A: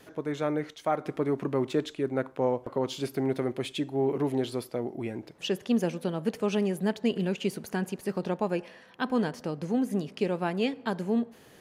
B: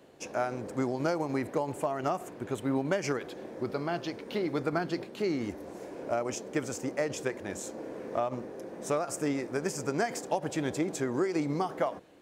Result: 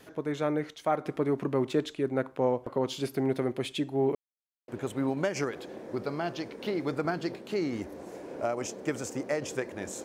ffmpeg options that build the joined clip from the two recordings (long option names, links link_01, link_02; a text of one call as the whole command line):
ffmpeg -i cue0.wav -i cue1.wav -filter_complex "[0:a]apad=whole_dur=10.04,atrim=end=10.04,asplit=2[link_01][link_02];[link_01]atrim=end=4.15,asetpts=PTS-STARTPTS,afade=type=out:start_time=4.146:duration=0.004:curve=hsin[link_03];[link_02]atrim=start=4.15:end=4.68,asetpts=PTS-STARTPTS,volume=0[link_04];[1:a]atrim=start=2.36:end=7.72,asetpts=PTS-STARTPTS,afade=type=in:duration=0.004:curve=hsin[link_05];[link_03][link_04][link_05]concat=n=3:v=0:a=1" out.wav